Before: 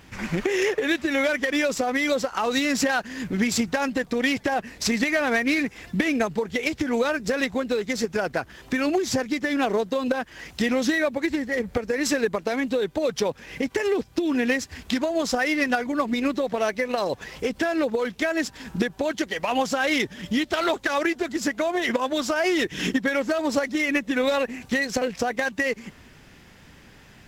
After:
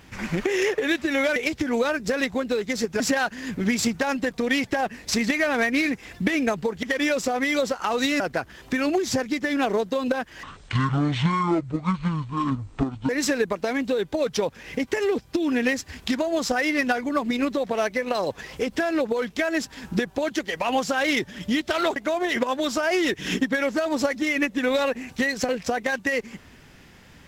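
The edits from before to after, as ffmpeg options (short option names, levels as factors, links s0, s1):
-filter_complex "[0:a]asplit=8[s0][s1][s2][s3][s4][s5][s6][s7];[s0]atrim=end=1.362[s8];[s1]atrim=start=6.558:end=8.202[s9];[s2]atrim=start=2.728:end=6.562[s10];[s3]atrim=start=1.358:end=2.732[s11];[s4]atrim=start=8.198:end=10.434[s12];[s5]atrim=start=10.43:end=11.92,asetpts=PTS-STARTPTS,asetrate=24696,aresample=44100,atrim=end_sample=117337,asetpts=PTS-STARTPTS[s13];[s6]atrim=start=11.916:end=20.792[s14];[s7]atrim=start=21.488[s15];[s8][s9]acrossfade=d=0.004:c1=hsin:c2=hsin[s16];[s16][s10]acrossfade=d=0.004:c1=hsin:c2=hsin[s17];[s17][s11]acrossfade=d=0.004:c1=hsin:c2=hsin[s18];[s18][s12]acrossfade=d=0.004:c1=hsin:c2=hsin[s19];[s19][s13]acrossfade=d=0.004:c1=hsin:c2=hsin[s20];[s20][s14]acrossfade=d=0.004:c1=hsin:c2=hsin[s21];[s21][s15]acrossfade=d=0.004:c1=hsin:c2=hsin"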